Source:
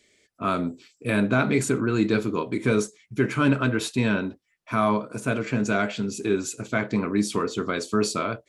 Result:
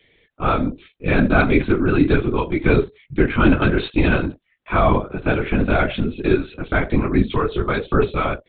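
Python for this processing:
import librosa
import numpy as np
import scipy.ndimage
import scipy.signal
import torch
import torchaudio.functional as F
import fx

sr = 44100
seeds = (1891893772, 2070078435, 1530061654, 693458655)

y = fx.lpc_vocoder(x, sr, seeds[0], excitation='whisper', order=16)
y = F.gain(torch.from_numpy(y), 6.5).numpy()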